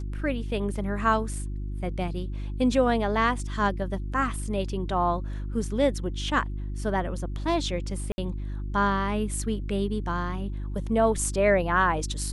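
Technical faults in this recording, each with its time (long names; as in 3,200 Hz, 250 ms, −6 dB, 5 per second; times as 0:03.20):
mains hum 50 Hz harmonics 7 −32 dBFS
0:08.12–0:08.18: drop-out 61 ms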